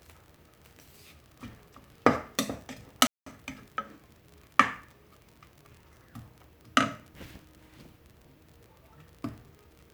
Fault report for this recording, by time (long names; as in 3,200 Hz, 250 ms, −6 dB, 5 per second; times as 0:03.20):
surface crackle 37 per second −41 dBFS
0:03.07–0:03.26: drop-out 194 ms